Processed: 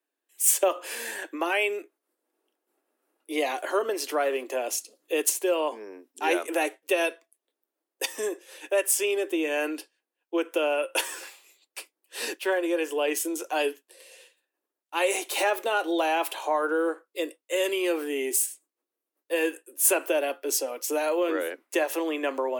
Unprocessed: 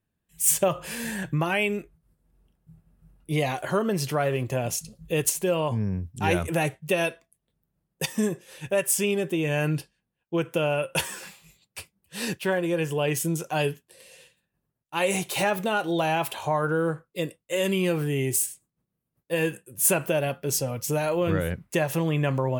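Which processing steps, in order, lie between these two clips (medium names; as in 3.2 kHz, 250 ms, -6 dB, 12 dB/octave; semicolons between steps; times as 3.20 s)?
steep high-pass 280 Hz 72 dB/octave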